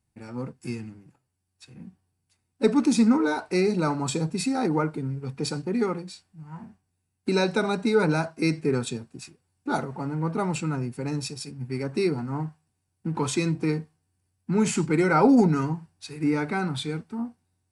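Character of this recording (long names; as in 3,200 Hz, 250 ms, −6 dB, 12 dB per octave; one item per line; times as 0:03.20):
background noise floor −77 dBFS
spectral slope −6.0 dB per octave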